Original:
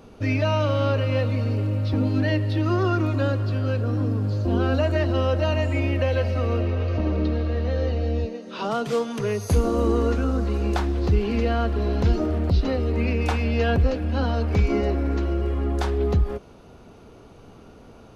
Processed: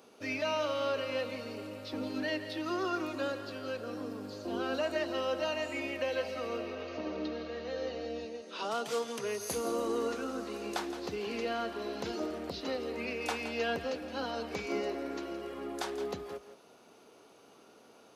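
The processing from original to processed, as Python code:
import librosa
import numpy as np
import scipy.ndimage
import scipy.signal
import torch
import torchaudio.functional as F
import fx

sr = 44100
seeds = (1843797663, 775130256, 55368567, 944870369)

p1 = scipy.signal.sosfilt(scipy.signal.butter(2, 330.0, 'highpass', fs=sr, output='sos'), x)
p2 = fx.high_shelf(p1, sr, hz=3700.0, db=9.0)
p3 = p2 + fx.echo_single(p2, sr, ms=168, db=-12.0, dry=0)
y = F.gain(torch.from_numpy(p3), -8.5).numpy()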